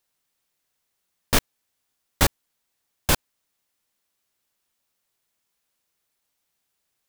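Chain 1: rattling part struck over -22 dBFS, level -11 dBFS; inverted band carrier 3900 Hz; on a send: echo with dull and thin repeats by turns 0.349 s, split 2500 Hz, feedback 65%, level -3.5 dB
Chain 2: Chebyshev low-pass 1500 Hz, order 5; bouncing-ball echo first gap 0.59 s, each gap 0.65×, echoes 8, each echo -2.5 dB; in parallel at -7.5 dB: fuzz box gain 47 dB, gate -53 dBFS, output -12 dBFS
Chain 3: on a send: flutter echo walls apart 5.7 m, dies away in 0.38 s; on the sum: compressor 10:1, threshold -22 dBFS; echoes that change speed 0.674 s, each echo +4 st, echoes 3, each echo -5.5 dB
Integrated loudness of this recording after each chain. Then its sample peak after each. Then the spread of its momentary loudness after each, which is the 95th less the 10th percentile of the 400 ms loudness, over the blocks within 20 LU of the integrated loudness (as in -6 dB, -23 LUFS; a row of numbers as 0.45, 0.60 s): -24.5, -24.0, -31.0 LUFS; -5.0, -6.5, -7.0 dBFS; 18, 5, 15 LU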